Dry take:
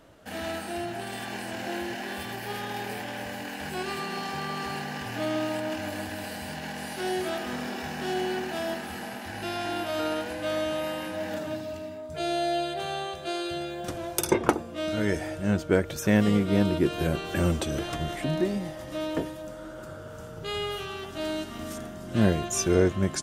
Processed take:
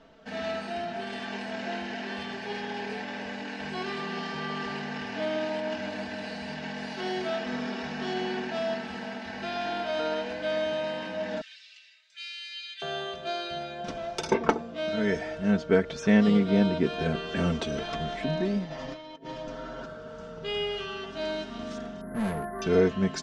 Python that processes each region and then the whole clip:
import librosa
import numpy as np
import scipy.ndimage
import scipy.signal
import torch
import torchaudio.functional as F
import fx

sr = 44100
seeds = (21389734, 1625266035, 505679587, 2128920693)

y = fx.chain(x, sr, fx.cheby2_highpass(hz=790.0, order=4, stop_db=50),
    fx.comb(ms=6.2, depth=0.32), at=(11.41, 12.82))
y = fx.chain(y, sr, fx.lowpass(hz=7100.0, slope=24),
    fx.comb(ms=7.4, depth=0.8),
    fx.over_compress(threshold_db=-36.0, ratio=-0.5), at=(18.64, 19.86))
y = fx.chain(y, sr, fx.brickwall_lowpass(high_hz=2100.0),
    fx.overload_stage(gain_db=27.0),
    fx.resample_bad(factor=4, down='filtered', up='zero_stuff'), at=(22.01, 22.62))
y = scipy.signal.sosfilt(scipy.signal.butter(4, 5500.0, 'lowpass', fs=sr, output='sos'), y)
y = fx.peak_eq(y, sr, hz=65.0, db=-7.5, octaves=0.61)
y = y + 0.74 * np.pad(y, (int(4.5 * sr / 1000.0), 0))[:len(y)]
y = F.gain(torch.from_numpy(y), -2.0).numpy()